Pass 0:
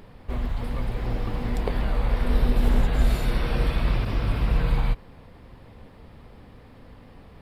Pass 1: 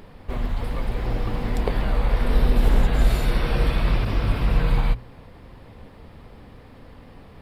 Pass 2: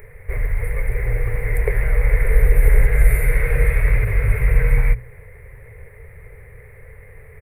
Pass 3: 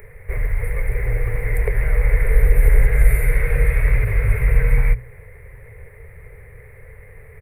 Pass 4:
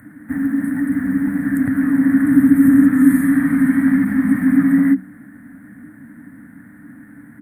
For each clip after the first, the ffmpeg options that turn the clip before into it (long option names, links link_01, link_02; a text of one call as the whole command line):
ffmpeg -i in.wav -af "bandreject=frequency=60:width_type=h:width=6,bandreject=frequency=120:width_type=h:width=6,bandreject=frequency=180:width_type=h:width=6,bandreject=frequency=240:width_type=h:width=6,volume=3dB" out.wav
ffmpeg -i in.wav -af "firequalizer=gain_entry='entry(130,0);entry(190,-21);entry(290,-28);entry(420,2);entry(730,-13);entry(1200,-10);entry(2100,10);entry(3000,-25);entry(5600,-28);entry(9200,6)':delay=0.05:min_phase=1,volume=5dB" out.wav
ffmpeg -i in.wav -filter_complex "[0:a]acrossover=split=180[link_01][link_02];[link_02]acompressor=threshold=-26dB:ratio=1.5[link_03];[link_01][link_03]amix=inputs=2:normalize=0" out.wav
ffmpeg -i in.wav -af "afreqshift=-310" out.wav